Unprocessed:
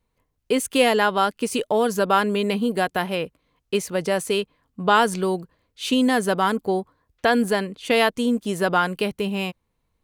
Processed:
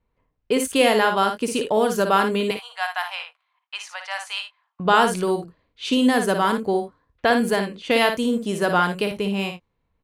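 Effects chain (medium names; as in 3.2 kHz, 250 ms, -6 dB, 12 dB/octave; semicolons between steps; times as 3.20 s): 2.51–4.80 s: steep high-pass 760 Hz 48 dB/octave; level-controlled noise filter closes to 2.6 kHz, open at -19.5 dBFS; early reflections 56 ms -7 dB, 79 ms -17 dB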